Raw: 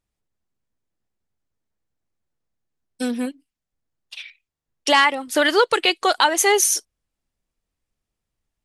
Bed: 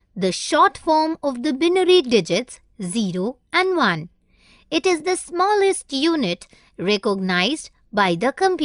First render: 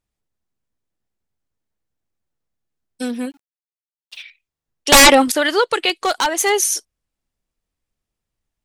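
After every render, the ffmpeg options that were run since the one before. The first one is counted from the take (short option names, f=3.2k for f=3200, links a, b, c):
-filter_complex "[0:a]asettb=1/sr,asplit=3[a][b][c];[a]atrim=end=3.034[d];[b]atrim=start=3.03:end=4.22,asetpts=PTS-STARTPTS,afade=t=in:d=0.004:c=qsin,afade=t=out:st=1.186:d=0.004:c=qsin,aeval=exprs='val(0)*gte(abs(val(0)),0.00282)':c=same[e];[c]atrim=start=4.216[f];[d][e]acrossfade=d=0.004:c1=hsin:c2=qsin[g];[g][f]acrossfade=d=0.004:c1=qsin:c2=hsin,asettb=1/sr,asplit=3[h][i][j];[h]atrim=end=4.924[k];[i]atrim=start=4.92:end=5.32,asetpts=PTS-STARTPTS,afade=t=in:d=0.004:c=qsin,afade=t=out:st=0.396:d=0.004:c=qsin,aeval=exprs='0.668*sin(PI/2*5.01*val(0)/0.668)':c=same[l];[j]atrim=start=5.316[m];[k][l]acrossfade=d=0.004:c1=hsin:c2=qsin[n];[n][m]acrossfade=d=0.004:c1=qsin:c2=hsin,asettb=1/sr,asplit=3[o][p][q];[o]atrim=end=5.894[r];[p]atrim=start=5.89:end=6.5,asetpts=PTS-STARTPTS,afade=t=in:d=0.004:c=qsin,afade=t=out:st=0.606:d=0.004:c=qsin,aeval=exprs='0.335*(abs(mod(val(0)/0.335+3,4)-2)-1)':c=same[s];[q]atrim=start=6.496[t];[r][s]acrossfade=d=0.004:c1=hsin:c2=qsin[u];[u][t]acrossfade=d=0.004:c1=qsin:c2=hsin"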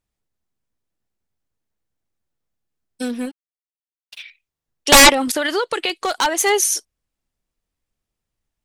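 -filter_complex "[0:a]asettb=1/sr,asplit=3[a][b][c];[a]atrim=end=3.024[d];[b]atrim=start=3.02:end=4.19,asetpts=PTS-STARTPTS,afade=t=in:d=0.004:c=qsin,afade=t=out:st=1.166:d=0.004:c=qsin,aeval=exprs='sgn(val(0))*max(abs(val(0))-0.00668,0)':c=same[e];[c]atrim=start=4.186[f];[d][e]acrossfade=d=0.004:c1=hsin:c2=qsin[g];[g][f]acrossfade=d=0.004:c1=qsin:c2=hsin,asettb=1/sr,asplit=3[h][i][j];[h]atrim=end=5.094[k];[i]atrim=start=5.09:end=6.15,asetpts=PTS-STARTPTS,afade=t=in:d=0.004:c=qsin,afade=t=out:st=1.056:d=0.004:c=qsin,acompressor=threshold=-16dB:ratio=5:attack=3.2:release=140:knee=1:detection=peak[l];[j]atrim=start=6.146[m];[k][l]acrossfade=d=0.004:c1=hsin:c2=qsin[n];[n][m]acrossfade=d=0.004:c1=qsin:c2=hsin"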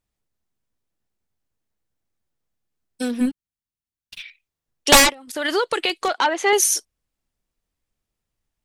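-filter_complex "[0:a]asplit=3[a][b][c];[a]afade=t=out:st=3.2:d=0.02[d];[b]asubboost=boost=10.5:cutoff=190,afade=t=in:st=3.2:d=0.02,afade=t=out:st=4.2:d=0.02[e];[c]afade=t=in:st=4.2:d=0.02[f];[d][e][f]amix=inputs=3:normalize=0,asettb=1/sr,asplit=3[g][h][i];[g]atrim=end=6.084[j];[h]atrim=start=6.08:end=6.53,asetpts=PTS-STARTPTS,afade=t=in:d=0.004:c=qsin,afade=t=out:st=0.446:d=0.004:c=qsin,highpass=240,lowpass=3.3k[k];[i]atrim=start=6.526[l];[j][k]acrossfade=d=0.004:c1=hsin:c2=qsin[m];[m][l]acrossfade=d=0.004:c1=qsin:c2=hsin,asplit=3[n][o][p];[n]atrim=end=5.14,asetpts=PTS-STARTPTS,afade=t=out:st=4.9:d=0.24:silence=0.0668344[q];[o]atrim=start=5.14:end=5.27,asetpts=PTS-STARTPTS,volume=-23.5dB[r];[p]atrim=start=5.27,asetpts=PTS-STARTPTS,afade=t=in:d=0.24:silence=0.0668344[s];[q][r][s]concat=n=3:v=0:a=1"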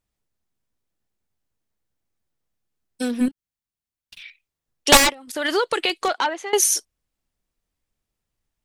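-filter_complex "[0:a]asettb=1/sr,asplit=3[a][b][c];[a]atrim=end=3.284[d];[b]atrim=start=3.28:end=4.22,asetpts=PTS-STARTPTS,afade=t=in:d=0.004:c=qsin,afade=t=out:st=0.936:d=0.004:c=qsin,acompressor=threshold=-41dB:ratio=2.5:attack=3.2:release=140:knee=1:detection=peak[e];[c]atrim=start=4.216[f];[d][e]acrossfade=d=0.004:c1=hsin:c2=qsin[g];[g][f]acrossfade=d=0.004:c1=qsin:c2=hsin,asettb=1/sr,asplit=3[h][i][j];[h]atrim=end=4.974[k];[i]atrim=start=4.97:end=5.57,asetpts=PTS-STARTPTS,afade=t=in:d=0.004:c=qsin,afade=t=out:st=0.596:d=0.004:c=qsin,asoftclip=type=hard:threshold=-14.5dB[l];[j]atrim=start=5.566[m];[k][l]acrossfade=d=0.004:c1=hsin:c2=qsin[n];[n][m]acrossfade=d=0.004:c1=qsin:c2=hsin,asplit=2[o][p];[o]atrim=end=6.53,asetpts=PTS-STARTPTS,afade=t=out:st=6.11:d=0.42:silence=0.112202[q];[p]atrim=start=6.53,asetpts=PTS-STARTPTS,afade=t=in:d=0.004:c=hsin:silence=0.112202[r];[q][r]concat=n=2:v=0:a=1"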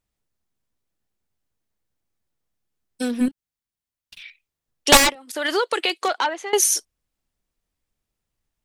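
-filter_complex "[0:a]asettb=1/sr,asplit=3[a][b][c];[a]atrim=end=5.154[d];[b]atrim=start=5.15:end=6.38,asetpts=PTS-STARTPTS,afade=t=in:d=0.004:c=qsin,afade=t=out:st=1.226:d=0.004:c=qsin,highpass=280[e];[c]atrim=start=6.376[f];[d][e]acrossfade=d=0.004:c1=hsin:c2=qsin[g];[g][f]acrossfade=d=0.004:c1=qsin:c2=hsin"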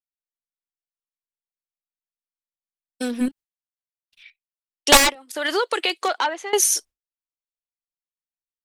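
-af "agate=range=-33dB:threshold=-34dB:ratio=3:detection=peak,equalizer=f=130:w=0.96:g=-5.5"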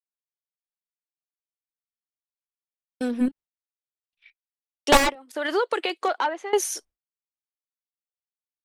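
-af "agate=range=-20dB:threshold=-48dB:ratio=16:detection=peak,highshelf=f=2.4k:g=-12"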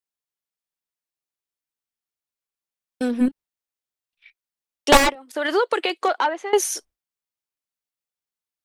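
-af "volume=3.5dB,alimiter=limit=-3dB:level=0:latency=1"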